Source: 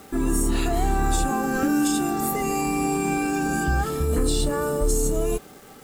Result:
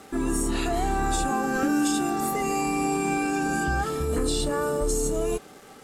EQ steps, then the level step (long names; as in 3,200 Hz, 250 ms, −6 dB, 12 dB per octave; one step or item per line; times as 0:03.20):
low-pass filter 12,000 Hz 12 dB per octave
low-shelf EQ 200 Hz −6.5 dB
high-shelf EQ 9,100 Hz −4 dB
0.0 dB